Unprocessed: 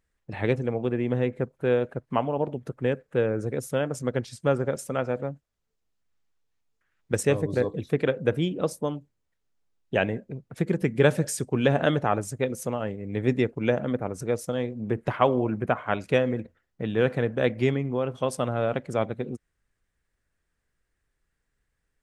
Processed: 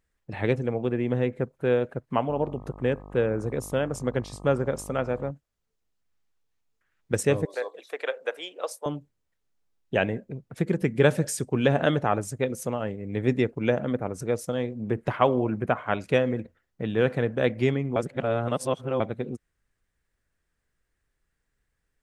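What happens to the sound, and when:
2.28–5.30 s: mains buzz 50 Hz, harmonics 25, -44 dBFS
7.45–8.86 s: high-pass 560 Hz 24 dB/octave
17.96–19.00 s: reverse

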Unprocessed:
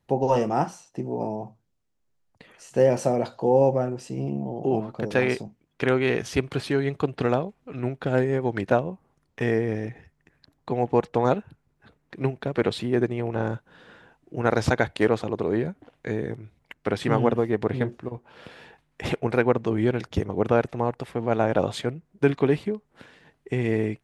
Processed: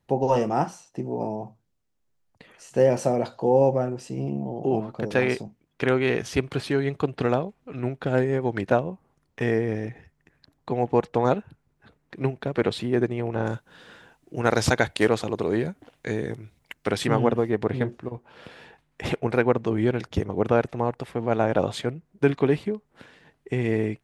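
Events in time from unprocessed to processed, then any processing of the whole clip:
13.46–17.07 s: treble shelf 3.4 kHz +10.5 dB

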